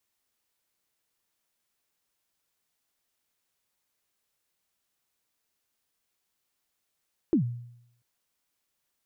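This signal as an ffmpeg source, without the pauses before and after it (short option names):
-f lavfi -i "aevalsrc='0.141*pow(10,-3*t/0.75)*sin(2*PI*(370*0.102/log(120/370)*(exp(log(120/370)*min(t,0.102)/0.102)-1)+120*max(t-0.102,0)))':d=0.69:s=44100"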